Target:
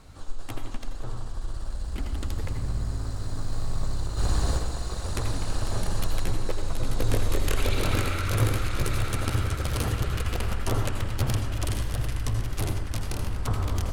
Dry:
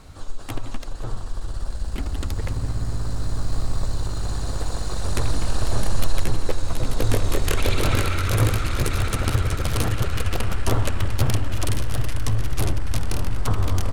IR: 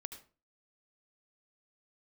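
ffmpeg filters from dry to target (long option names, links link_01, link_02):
-filter_complex "[0:a]asplit=3[link_01][link_02][link_03];[link_01]afade=type=out:start_time=4.17:duration=0.02[link_04];[link_02]acontrast=86,afade=type=in:start_time=4.17:duration=0.02,afade=type=out:start_time=4.57:duration=0.02[link_05];[link_03]afade=type=in:start_time=4.57:duration=0.02[link_06];[link_04][link_05][link_06]amix=inputs=3:normalize=0[link_07];[1:a]atrim=start_sample=2205,asetrate=39249,aresample=44100[link_08];[link_07][link_08]afir=irnorm=-1:irlink=0,volume=-1.5dB"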